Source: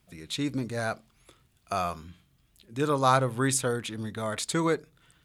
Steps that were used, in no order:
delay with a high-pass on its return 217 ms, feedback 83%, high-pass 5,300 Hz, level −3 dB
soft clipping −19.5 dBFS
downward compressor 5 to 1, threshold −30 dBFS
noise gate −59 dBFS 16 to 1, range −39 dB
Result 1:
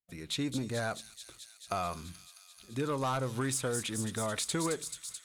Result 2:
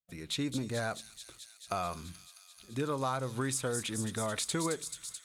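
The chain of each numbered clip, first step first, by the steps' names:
soft clipping, then downward compressor, then noise gate, then delay with a high-pass on its return
noise gate, then downward compressor, then soft clipping, then delay with a high-pass on its return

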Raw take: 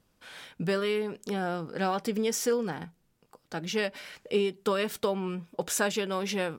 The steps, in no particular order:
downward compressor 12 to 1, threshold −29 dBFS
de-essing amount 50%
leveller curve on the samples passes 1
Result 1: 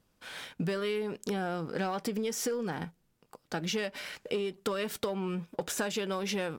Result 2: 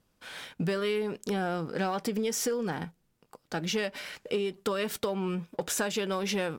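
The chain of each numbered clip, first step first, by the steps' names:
leveller curve on the samples, then de-essing, then downward compressor
de-essing, then downward compressor, then leveller curve on the samples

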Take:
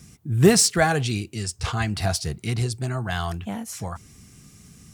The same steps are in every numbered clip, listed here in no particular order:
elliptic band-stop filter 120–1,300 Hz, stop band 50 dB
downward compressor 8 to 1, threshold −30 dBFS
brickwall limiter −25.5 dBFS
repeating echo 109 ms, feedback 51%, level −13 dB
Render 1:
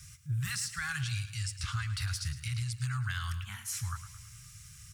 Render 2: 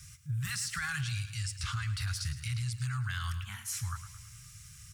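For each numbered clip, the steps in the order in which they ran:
elliptic band-stop filter, then downward compressor, then brickwall limiter, then repeating echo
elliptic band-stop filter, then brickwall limiter, then repeating echo, then downward compressor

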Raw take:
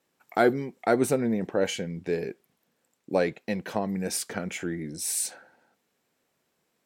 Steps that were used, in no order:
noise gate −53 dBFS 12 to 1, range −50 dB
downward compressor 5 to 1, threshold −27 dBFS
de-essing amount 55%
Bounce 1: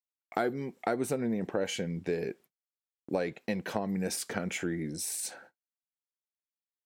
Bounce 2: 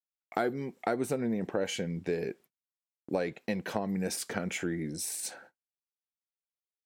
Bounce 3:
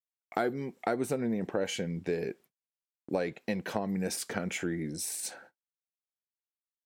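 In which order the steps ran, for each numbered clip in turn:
downward compressor, then de-essing, then noise gate
de-essing, then downward compressor, then noise gate
de-essing, then noise gate, then downward compressor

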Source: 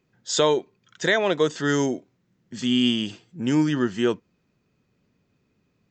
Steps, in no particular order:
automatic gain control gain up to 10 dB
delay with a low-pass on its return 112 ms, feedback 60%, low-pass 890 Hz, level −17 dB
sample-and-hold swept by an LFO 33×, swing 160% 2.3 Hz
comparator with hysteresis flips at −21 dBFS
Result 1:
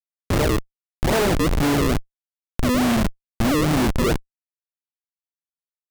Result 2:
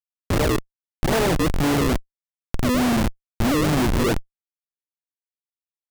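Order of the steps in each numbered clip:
delay with a low-pass on its return, then sample-and-hold swept by an LFO, then automatic gain control, then comparator with hysteresis
automatic gain control, then sample-and-hold swept by an LFO, then delay with a low-pass on its return, then comparator with hysteresis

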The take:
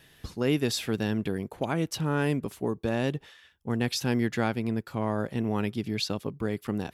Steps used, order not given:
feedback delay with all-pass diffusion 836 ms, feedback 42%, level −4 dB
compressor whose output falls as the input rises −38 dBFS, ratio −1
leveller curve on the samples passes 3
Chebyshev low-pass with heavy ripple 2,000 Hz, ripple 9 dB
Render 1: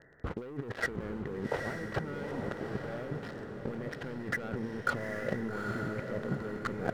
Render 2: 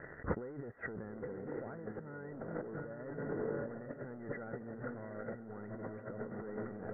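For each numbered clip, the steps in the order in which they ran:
Chebyshev low-pass with heavy ripple, then leveller curve on the samples, then compressor whose output falls as the input rises, then feedback delay with all-pass diffusion
leveller curve on the samples, then feedback delay with all-pass diffusion, then compressor whose output falls as the input rises, then Chebyshev low-pass with heavy ripple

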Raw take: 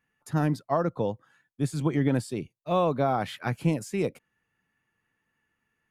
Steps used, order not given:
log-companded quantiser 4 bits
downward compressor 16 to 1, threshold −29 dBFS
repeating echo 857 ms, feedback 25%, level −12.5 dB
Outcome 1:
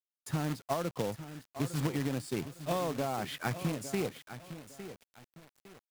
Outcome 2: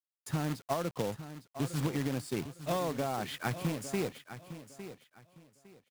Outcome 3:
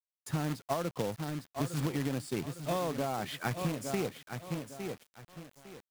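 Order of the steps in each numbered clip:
downward compressor, then repeating echo, then log-companded quantiser
downward compressor, then log-companded quantiser, then repeating echo
repeating echo, then downward compressor, then log-companded quantiser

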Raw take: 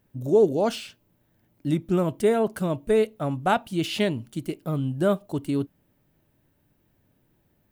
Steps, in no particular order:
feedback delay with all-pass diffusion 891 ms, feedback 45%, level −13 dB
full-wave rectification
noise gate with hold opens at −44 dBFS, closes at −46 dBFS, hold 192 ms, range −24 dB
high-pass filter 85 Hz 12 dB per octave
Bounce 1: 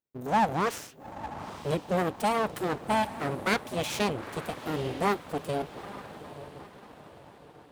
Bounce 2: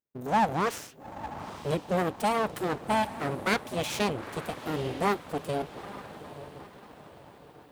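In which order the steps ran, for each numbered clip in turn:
noise gate with hold, then feedback delay with all-pass diffusion, then full-wave rectification, then high-pass filter
feedback delay with all-pass diffusion, then full-wave rectification, then high-pass filter, then noise gate with hold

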